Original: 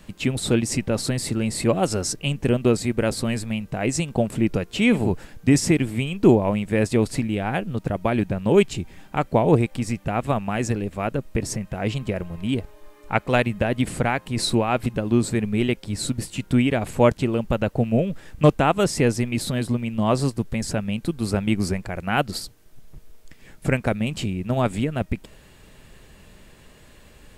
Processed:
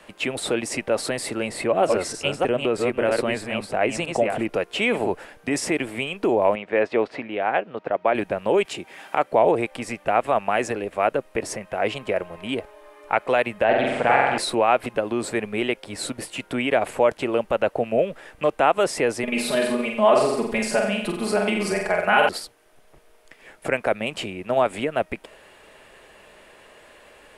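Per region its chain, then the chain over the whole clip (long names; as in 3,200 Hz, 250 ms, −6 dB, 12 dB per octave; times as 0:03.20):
0:01.49–0:04.49: delay that plays each chunk backwards 321 ms, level −5 dB + bass and treble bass +3 dB, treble −5 dB
0:06.55–0:08.15: high-pass filter 280 Hz 6 dB per octave + high-frequency loss of the air 240 metres
0:08.65–0:09.31: high-pass filter 130 Hz + one half of a high-frequency compander encoder only
0:13.64–0:14.38: high-frequency loss of the air 110 metres + flutter between parallel walls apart 7.7 metres, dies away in 1.1 s + highs frequency-modulated by the lows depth 0.17 ms
0:19.23–0:22.29: mains-hum notches 60/120 Hz + comb filter 4.8 ms, depth 99% + flutter between parallel walls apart 7.8 metres, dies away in 0.6 s
whole clip: graphic EQ with 15 bands 630 Hz +3 dB, 4,000 Hz −4 dB, 10,000 Hz +12 dB; brickwall limiter −11 dBFS; three-way crossover with the lows and the highs turned down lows −20 dB, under 360 Hz, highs −17 dB, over 4,400 Hz; level +5.5 dB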